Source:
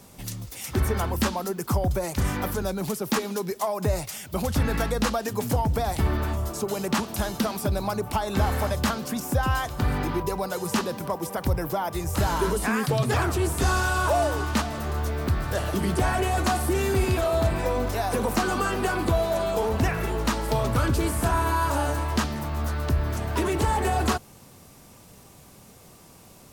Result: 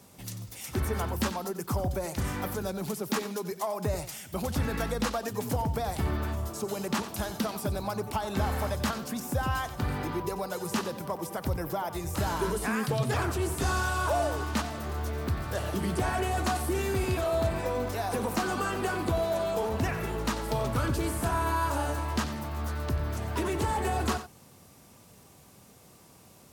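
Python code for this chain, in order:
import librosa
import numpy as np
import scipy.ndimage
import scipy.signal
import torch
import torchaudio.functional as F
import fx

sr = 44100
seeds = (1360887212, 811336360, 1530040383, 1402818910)

p1 = scipy.signal.sosfilt(scipy.signal.butter(2, 59.0, 'highpass', fs=sr, output='sos'), x)
p2 = p1 + fx.echo_single(p1, sr, ms=91, db=-12.5, dry=0)
y = p2 * librosa.db_to_amplitude(-5.0)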